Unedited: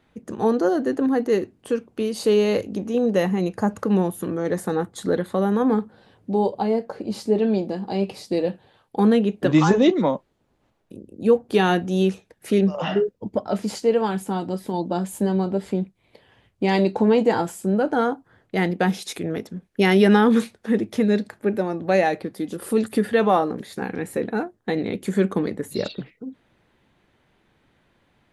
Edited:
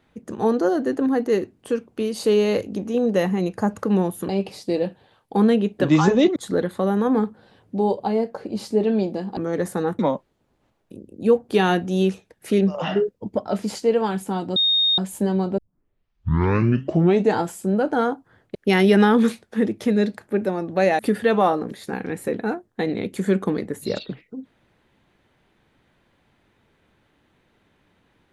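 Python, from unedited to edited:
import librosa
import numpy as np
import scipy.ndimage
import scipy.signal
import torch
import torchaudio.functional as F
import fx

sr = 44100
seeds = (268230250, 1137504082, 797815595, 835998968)

y = fx.edit(x, sr, fx.swap(start_s=4.29, length_s=0.62, other_s=7.92, other_length_s=2.07),
    fx.bleep(start_s=14.56, length_s=0.42, hz=3700.0, db=-15.5),
    fx.tape_start(start_s=15.58, length_s=1.82),
    fx.cut(start_s=18.55, length_s=1.12),
    fx.cut(start_s=22.11, length_s=0.77), tone=tone)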